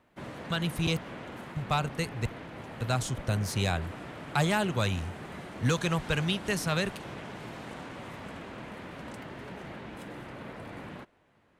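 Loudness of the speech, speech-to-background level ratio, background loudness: −31.0 LKFS, 11.5 dB, −42.5 LKFS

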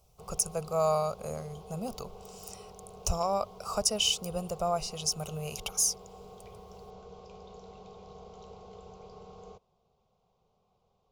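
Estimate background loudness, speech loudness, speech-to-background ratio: −50.0 LKFS, −31.0 LKFS, 19.0 dB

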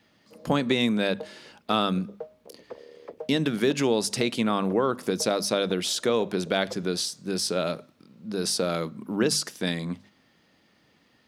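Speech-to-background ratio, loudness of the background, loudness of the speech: 19.5 dB, −46.0 LKFS, −26.5 LKFS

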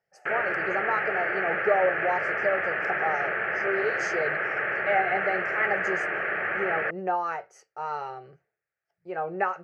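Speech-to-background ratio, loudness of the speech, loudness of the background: −3.0 dB, −30.5 LKFS, −27.5 LKFS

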